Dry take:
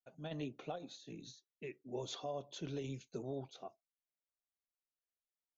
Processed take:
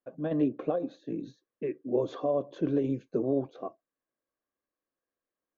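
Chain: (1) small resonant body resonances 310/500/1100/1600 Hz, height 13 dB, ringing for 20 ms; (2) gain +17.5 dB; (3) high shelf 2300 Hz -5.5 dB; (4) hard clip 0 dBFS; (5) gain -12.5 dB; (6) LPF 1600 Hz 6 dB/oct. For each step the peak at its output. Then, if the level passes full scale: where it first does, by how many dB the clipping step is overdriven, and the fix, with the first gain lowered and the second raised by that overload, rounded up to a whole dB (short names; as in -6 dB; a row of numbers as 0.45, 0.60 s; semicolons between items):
-21.0, -3.5, -3.5, -3.5, -16.0, -16.5 dBFS; no overload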